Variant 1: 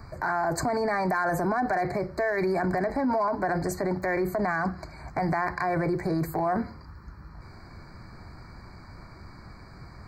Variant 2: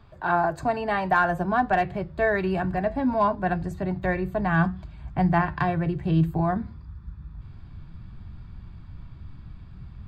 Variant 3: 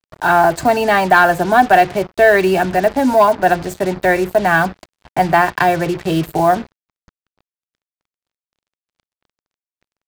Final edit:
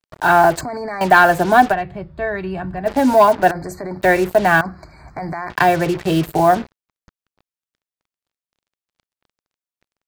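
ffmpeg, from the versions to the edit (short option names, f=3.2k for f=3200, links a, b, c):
-filter_complex "[0:a]asplit=3[a][b][c];[2:a]asplit=5[d][e][f][g][h];[d]atrim=end=0.612[i];[a]atrim=start=0.608:end=1.012[j];[e]atrim=start=1.008:end=1.74[k];[1:a]atrim=start=1.7:end=2.89[l];[f]atrim=start=2.85:end=3.512[m];[b]atrim=start=3.508:end=4.012[n];[g]atrim=start=4.008:end=4.612[o];[c]atrim=start=4.608:end=5.502[p];[h]atrim=start=5.498[q];[i][j]acrossfade=d=0.004:c1=hsin:c2=hsin[r];[r][k]acrossfade=d=0.004:c1=hsin:c2=hsin[s];[s][l]acrossfade=d=0.04:c1=tri:c2=tri[t];[t][m]acrossfade=d=0.04:c1=tri:c2=tri[u];[u][n]acrossfade=d=0.004:c1=hsin:c2=hsin[v];[v][o]acrossfade=d=0.004:c1=hsin:c2=hsin[w];[w][p]acrossfade=d=0.004:c1=hsin:c2=hsin[x];[x][q]acrossfade=d=0.004:c1=hsin:c2=hsin"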